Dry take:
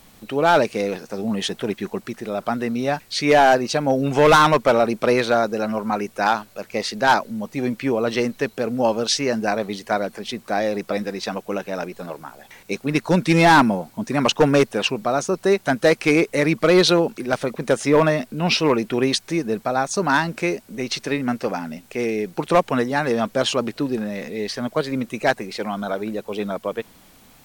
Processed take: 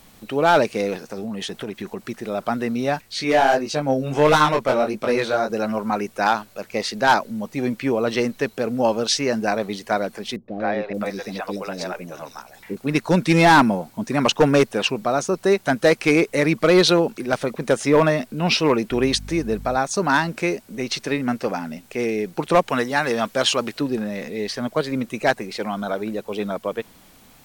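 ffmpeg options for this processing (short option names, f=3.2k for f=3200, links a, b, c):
-filter_complex "[0:a]asettb=1/sr,asplit=3[a][b][c];[a]atrim=end=0.954[d];[b]atrim=start=0.95:end=2.03,asetpts=PTS-STARTPTS,afade=t=in:d=0.004:c=qsin,afade=t=out:st=1.076:d=0.004:c=qsin,acompressor=threshold=-25dB:ratio=5:attack=3.2:release=140:knee=1:detection=peak[e];[c]atrim=start=2.026[f];[d][e]acrossfade=d=0.004:c1=hsin:c2=qsin[g];[g][f]acrossfade=d=0.004:c1=qsin:c2=hsin,asettb=1/sr,asplit=3[h][i][j];[h]atrim=end=3.014[k];[i]atrim=start=3.01:end=5.5,asetpts=PTS-STARTPTS,afade=t=in:d=0.004:c=qsin,afade=t=out:st=2.486:d=0.004:c=qsin,flanger=delay=19:depth=4.5:speed=1.5[l];[j]atrim=start=5.496[m];[k][l]acrossfade=d=0.004:c1=hsin:c2=qsin[n];[n][m]acrossfade=d=0.004:c1=qsin:c2=hsin,asettb=1/sr,asplit=3[o][p][q];[o]atrim=end=10.364[r];[p]atrim=start=10.36:end=12.77,asetpts=PTS-STARTPTS,afade=t=in:d=0.004:c=qsin,afade=t=out:st=2.406:d=0.004:c=qsin,acrossover=split=490|3600[s][t][u];[t]adelay=120[v];[u]adelay=580[w];[s][v][w]amix=inputs=3:normalize=0,atrim=end_sample=106281[x];[q]atrim=start=12.766[y];[r][x]acrossfade=d=0.004:c1=hsin:c2=qsin[z];[z][y]acrossfade=d=0.004:c1=qsin:c2=hsin,asettb=1/sr,asplit=3[aa][ab][ac];[aa]atrim=end=18.914[ad];[ab]atrim=start=18.91:end=19.77,asetpts=PTS-STARTPTS,afade=t=in:d=0.004:c=qsin,afade=t=out:st=0.856:d=0.004:c=qsin,aeval=exprs='val(0)+0.02*(sin(2*PI*50*n/s)+sin(2*PI*2*50*n/s)/2+sin(2*PI*3*50*n/s)/3+sin(2*PI*4*50*n/s)/4+sin(2*PI*5*50*n/s)/5)':c=same[ae];[ac]atrim=start=19.766[af];[ad][ae]acrossfade=d=0.004:c1=hsin:c2=qsin[ag];[ag][af]acrossfade=d=0.004:c1=qsin:c2=hsin,asettb=1/sr,asplit=3[ah][ai][aj];[ah]atrim=end=22.684[ak];[ai]atrim=start=22.68:end=23.81,asetpts=PTS-STARTPTS,afade=t=in:d=0.004:c=qsin,afade=t=out:st=1.126:d=0.004:c=qsin,tiltshelf=f=730:g=-4[al];[aj]atrim=start=23.806[am];[ak][al]acrossfade=d=0.004:c1=hsin:c2=qsin[an];[an][am]acrossfade=d=0.004:c1=qsin:c2=hsin"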